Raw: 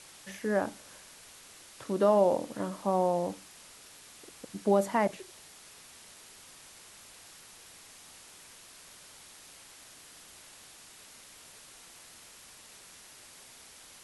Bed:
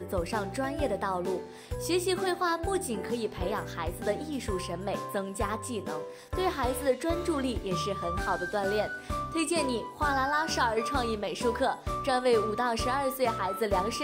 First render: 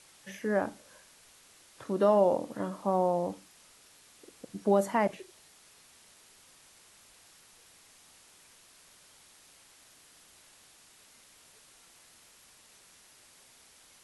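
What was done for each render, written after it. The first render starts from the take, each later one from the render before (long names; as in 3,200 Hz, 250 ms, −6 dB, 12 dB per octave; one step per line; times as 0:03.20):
noise reduction from a noise print 6 dB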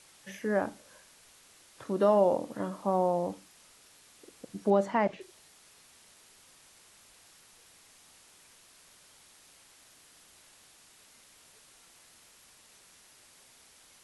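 0:04.70–0:05.21: low-pass filter 4,800 Hz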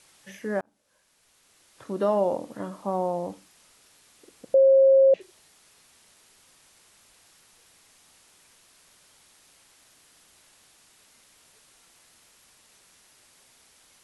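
0:00.61–0:01.92: fade in
0:04.54–0:05.14: beep over 538 Hz −13 dBFS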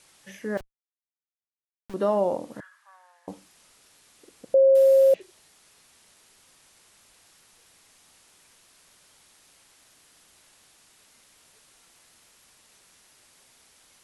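0:00.57–0:01.94: comparator with hysteresis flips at −32.5 dBFS
0:02.60–0:03.28: four-pole ladder high-pass 1,600 Hz, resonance 85%
0:04.75–0:05.15: variable-slope delta modulation 64 kbit/s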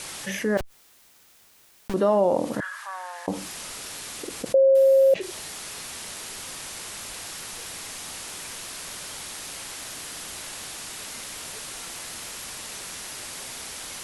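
envelope flattener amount 50%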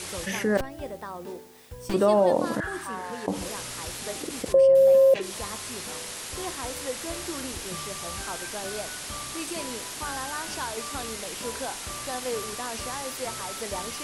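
mix in bed −7 dB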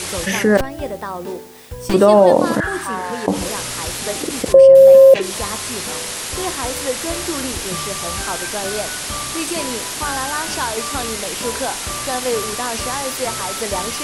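level +10.5 dB
brickwall limiter −1 dBFS, peak gain reduction 1.5 dB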